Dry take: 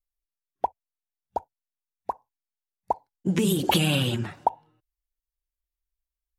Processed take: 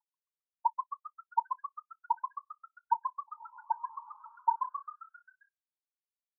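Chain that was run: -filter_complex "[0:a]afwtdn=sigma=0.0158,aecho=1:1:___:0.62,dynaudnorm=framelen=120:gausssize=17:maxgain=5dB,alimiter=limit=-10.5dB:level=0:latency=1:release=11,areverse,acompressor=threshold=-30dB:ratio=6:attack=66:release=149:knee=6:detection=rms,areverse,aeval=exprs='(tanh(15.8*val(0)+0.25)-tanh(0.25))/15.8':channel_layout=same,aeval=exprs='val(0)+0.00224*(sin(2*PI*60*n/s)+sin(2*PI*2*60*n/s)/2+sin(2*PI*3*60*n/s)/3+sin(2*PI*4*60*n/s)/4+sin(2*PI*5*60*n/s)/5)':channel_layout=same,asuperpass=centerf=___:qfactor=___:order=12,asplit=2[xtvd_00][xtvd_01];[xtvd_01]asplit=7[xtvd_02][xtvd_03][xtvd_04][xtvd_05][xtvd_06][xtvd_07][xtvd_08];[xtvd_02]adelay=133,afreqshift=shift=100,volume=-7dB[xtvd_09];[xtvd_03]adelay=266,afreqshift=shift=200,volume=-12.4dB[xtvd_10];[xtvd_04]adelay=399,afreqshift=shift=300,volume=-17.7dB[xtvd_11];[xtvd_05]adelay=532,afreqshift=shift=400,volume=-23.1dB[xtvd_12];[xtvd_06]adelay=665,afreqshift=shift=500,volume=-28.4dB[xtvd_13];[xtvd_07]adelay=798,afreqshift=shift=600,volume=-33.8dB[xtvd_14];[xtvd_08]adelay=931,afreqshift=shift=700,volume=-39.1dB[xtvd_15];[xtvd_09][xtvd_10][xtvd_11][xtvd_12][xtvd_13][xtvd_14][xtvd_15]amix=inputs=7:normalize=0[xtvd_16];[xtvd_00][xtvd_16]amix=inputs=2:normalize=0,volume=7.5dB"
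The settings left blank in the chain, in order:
6.5, 920, 6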